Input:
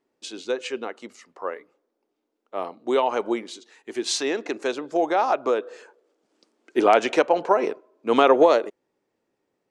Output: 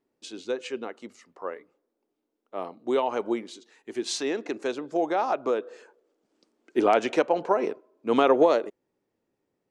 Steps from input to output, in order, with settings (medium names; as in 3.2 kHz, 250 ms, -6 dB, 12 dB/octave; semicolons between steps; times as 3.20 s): bass shelf 270 Hz +8.5 dB; trim -5.5 dB